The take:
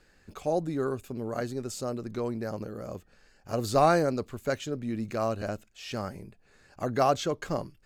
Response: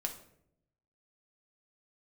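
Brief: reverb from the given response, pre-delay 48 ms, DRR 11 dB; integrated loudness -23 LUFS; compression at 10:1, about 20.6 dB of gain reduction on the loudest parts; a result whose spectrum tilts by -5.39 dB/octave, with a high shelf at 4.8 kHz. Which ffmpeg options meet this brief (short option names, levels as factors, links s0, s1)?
-filter_complex "[0:a]highshelf=f=4800:g=-6.5,acompressor=threshold=0.0112:ratio=10,asplit=2[s0][s1];[1:a]atrim=start_sample=2205,adelay=48[s2];[s1][s2]afir=irnorm=-1:irlink=0,volume=0.251[s3];[s0][s3]amix=inputs=2:normalize=0,volume=11.2"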